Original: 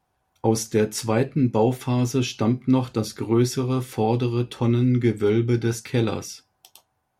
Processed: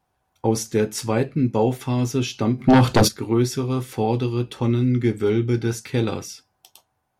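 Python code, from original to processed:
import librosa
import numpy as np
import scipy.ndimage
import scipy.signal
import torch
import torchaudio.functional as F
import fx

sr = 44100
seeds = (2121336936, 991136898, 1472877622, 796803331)

y = fx.fold_sine(x, sr, drive_db=fx.line((2.58, 6.0), (3.07, 12.0)), ceiling_db=-8.5, at=(2.58, 3.07), fade=0.02)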